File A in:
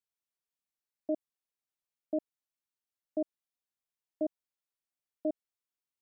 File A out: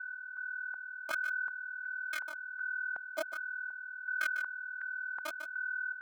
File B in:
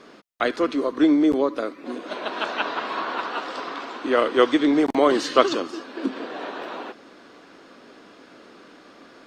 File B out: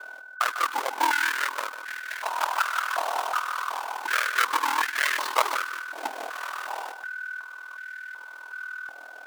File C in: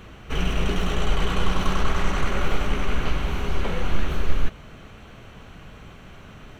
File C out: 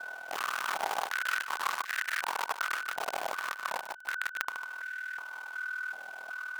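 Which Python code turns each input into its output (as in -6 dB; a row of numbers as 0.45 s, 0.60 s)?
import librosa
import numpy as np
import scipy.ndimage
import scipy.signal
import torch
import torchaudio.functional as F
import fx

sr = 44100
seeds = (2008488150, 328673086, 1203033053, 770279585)

y = fx.halfwave_hold(x, sr)
y = fx.vibrato(y, sr, rate_hz=7.2, depth_cents=30.0)
y = y + 10.0 ** (-32.0 / 20.0) * np.sin(2.0 * np.pi * 1500.0 * np.arange(len(y)) / sr)
y = 10.0 ** (-7.0 / 20.0) * np.tanh(y / 10.0 ** (-7.0 / 20.0))
y = y * np.sin(2.0 * np.pi * 20.0 * np.arange(len(y)) / sr)
y = y + 10.0 ** (-10.5 / 20.0) * np.pad(y, (int(149 * sr / 1000.0), 0))[:len(y)]
y = fx.filter_held_highpass(y, sr, hz=2.7, low_hz=730.0, high_hz=1700.0)
y = y * 10.0 ** (-6.0 / 20.0)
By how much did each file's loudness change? +1.5 LU, -4.5 LU, -7.5 LU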